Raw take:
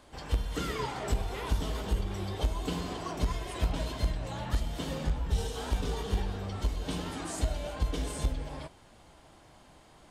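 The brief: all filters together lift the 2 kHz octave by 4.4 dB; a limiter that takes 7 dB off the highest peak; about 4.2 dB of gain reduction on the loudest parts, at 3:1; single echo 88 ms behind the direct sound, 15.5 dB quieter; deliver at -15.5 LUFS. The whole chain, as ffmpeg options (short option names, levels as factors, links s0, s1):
-af "equalizer=f=2000:t=o:g=5.5,acompressor=threshold=0.0398:ratio=3,alimiter=level_in=1.26:limit=0.0631:level=0:latency=1,volume=0.794,aecho=1:1:88:0.168,volume=11.9"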